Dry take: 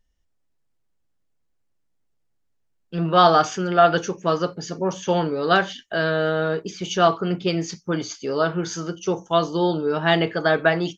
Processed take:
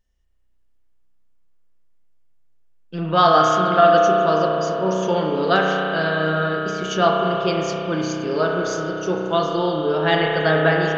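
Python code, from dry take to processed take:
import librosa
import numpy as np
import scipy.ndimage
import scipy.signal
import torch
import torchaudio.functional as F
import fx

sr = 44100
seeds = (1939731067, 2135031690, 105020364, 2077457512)

y = fx.rev_spring(x, sr, rt60_s=3.5, pass_ms=(32,), chirp_ms=80, drr_db=-1.0)
y = y * 10.0 ** (-1.0 / 20.0)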